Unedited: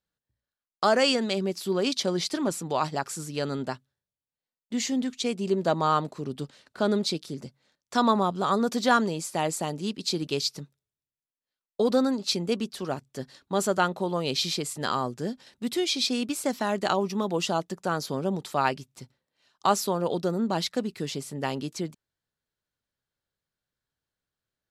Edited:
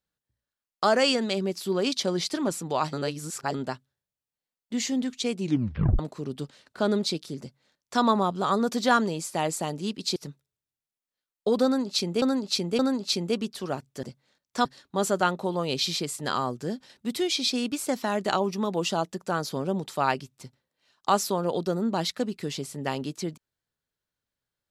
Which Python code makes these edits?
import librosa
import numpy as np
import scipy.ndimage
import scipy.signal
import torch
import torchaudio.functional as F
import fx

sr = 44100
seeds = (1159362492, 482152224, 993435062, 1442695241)

y = fx.edit(x, sr, fx.reverse_span(start_s=2.93, length_s=0.61),
    fx.tape_stop(start_s=5.4, length_s=0.59),
    fx.duplicate(start_s=7.4, length_s=0.62, to_s=13.22),
    fx.cut(start_s=10.16, length_s=0.33),
    fx.repeat(start_s=11.98, length_s=0.57, count=3), tone=tone)